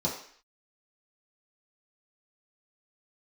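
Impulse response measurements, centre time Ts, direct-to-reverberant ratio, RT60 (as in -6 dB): 31 ms, -6.0 dB, 0.55 s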